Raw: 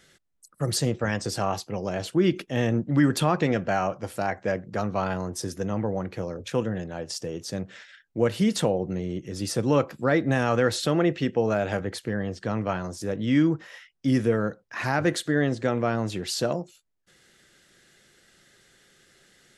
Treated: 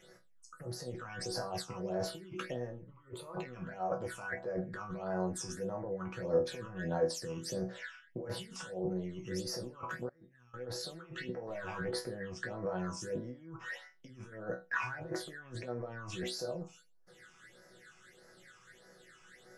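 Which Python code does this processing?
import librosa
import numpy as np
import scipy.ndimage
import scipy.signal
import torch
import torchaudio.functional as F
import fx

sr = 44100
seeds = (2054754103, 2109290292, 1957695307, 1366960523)

y = fx.overload_stage(x, sr, gain_db=23.5, at=(11.47, 12.05))
y = fx.over_compress(y, sr, threshold_db=-34.0, ratio=-1.0)
y = fx.fixed_phaser(y, sr, hz=1100.0, stages=8, at=(2.78, 3.33), fade=0.02)
y = fx.resonator_bank(y, sr, root=47, chord='sus4', decay_s=0.27)
y = fx.tone_stack(y, sr, knobs='6-0-2', at=(10.09, 10.54))
y = fx.phaser_stages(y, sr, stages=8, low_hz=520.0, high_hz=3000.0, hz=1.6, feedback_pct=45)
y = fx.band_shelf(y, sr, hz=920.0, db=10.0, octaves=2.5)
y = y * 10.0 ** (3.5 / 20.0)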